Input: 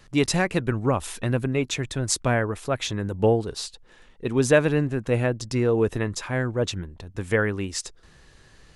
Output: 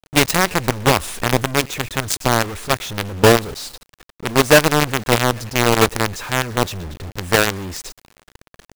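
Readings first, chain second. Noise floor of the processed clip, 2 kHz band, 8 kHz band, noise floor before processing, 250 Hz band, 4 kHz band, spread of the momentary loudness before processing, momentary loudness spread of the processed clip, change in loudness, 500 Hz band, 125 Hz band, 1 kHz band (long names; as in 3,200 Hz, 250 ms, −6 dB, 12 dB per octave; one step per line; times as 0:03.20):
below −85 dBFS, +9.5 dB, +8.5 dB, −53 dBFS, +4.0 dB, +11.5 dB, 11 LU, 16 LU, +7.0 dB, +5.0 dB, +3.0 dB, +12.5 dB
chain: feedback echo with a band-pass in the loop 116 ms, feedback 54%, band-pass 3,000 Hz, level −18.5 dB
in parallel at −2 dB: brickwall limiter −16 dBFS, peak gain reduction 10 dB
on the sum: soft clipping −5.5 dBFS, distortion −25 dB
log-companded quantiser 2 bits
one half of a high-frequency compander decoder only
level −2.5 dB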